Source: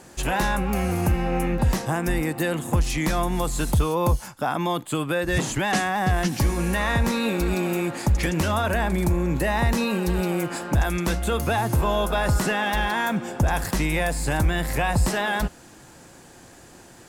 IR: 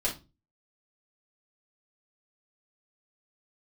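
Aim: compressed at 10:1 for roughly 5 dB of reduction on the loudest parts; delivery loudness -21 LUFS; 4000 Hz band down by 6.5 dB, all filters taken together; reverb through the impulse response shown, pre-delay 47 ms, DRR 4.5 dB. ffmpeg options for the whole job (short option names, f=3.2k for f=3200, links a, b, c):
-filter_complex "[0:a]equalizer=f=4k:t=o:g=-8.5,acompressor=threshold=-21dB:ratio=10,asplit=2[a][b];[1:a]atrim=start_sample=2205,adelay=47[c];[b][c]afir=irnorm=-1:irlink=0,volume=-11dB[d];[a][d]amix=inputs=2:normalize=0,volume=4.5dB"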